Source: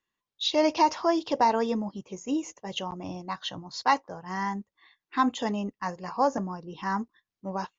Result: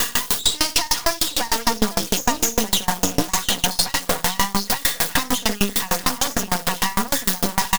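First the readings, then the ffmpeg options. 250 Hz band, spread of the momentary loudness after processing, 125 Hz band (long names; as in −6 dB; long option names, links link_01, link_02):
+4.0 dB, 3 LU, +10.0 dB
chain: -filter_complex "[0:a]aeval=exprs='val(0)+0.5*0.0188*sgn(val(0))':channel_layout=same,aecho=1:1:60|860:0.501|0.422,acrossover=split=120|1600[link_01][link_02][link_03];[link_02]acompressor=threshold=-34dB:ratio=6[link_04];[link_03]equalizer=frequency=2300:width=5:gain=-9[link_05];[link_01][link_04][link_05]amix=inputs=3:normalize=0,acrossover=split=200|5000[link_06][link_07][link_08];[link_06]acompressor=threshold=-55dB:ratio=4[link_09];[link_07]acompressor=threshold=-34dB:ratio=4[link_10];[link_08]acompressor=threshold=-45dB:ratio=4[link_11];[link_09][link_10][link_11]amix=inputs=3:normalize=0,aecho=1:1:4.2:0.92,aeval=exprs='max(val(0),0)':channel_layout=same,highshelf=frequency=4900:gain=10,alimiter=level_in=26.5dB:limit=-1dB:release=50:level=0:latency=1,aeval=exprs='val(0)*pow(10,-27*if(lt(mod(6.6*n/s,1),2*abs(6.6)/1000),1-mod(6.6*n/s,1)/(2*abs(6.6)/1000),(mod(6.6*n/s,1)-2*abs(6.6)/1000)/(1-2*abs(6.6)/1000))/20)':channel_layout=same"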